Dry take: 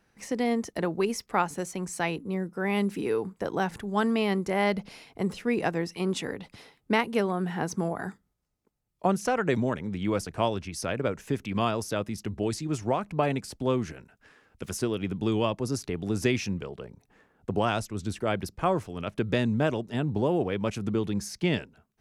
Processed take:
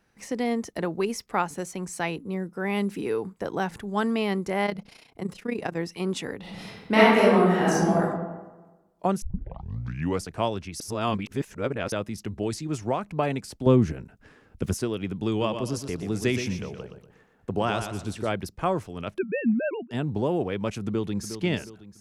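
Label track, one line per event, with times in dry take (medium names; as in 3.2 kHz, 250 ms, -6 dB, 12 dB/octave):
4.660000	5.770000	AM modulator 30 Hz, depth 65%
6.400000	7.990000	reverb throw, RT60 1.2 s, DRR -8.5 dB
9.220000	9.220000	tape start 1.02 s
10.800000	11.920000	reverse
13.660000	14.740000	bass shelf 480 Hz +12 dB
15.290000	18.320000	feedback delay 121 ms, feedback 34%, level -8 dB
19.180000	19.910000	formants replaced by sine waves
20.870000	21.330000	echo throw 360 ms, feedback 40%, level -10 dB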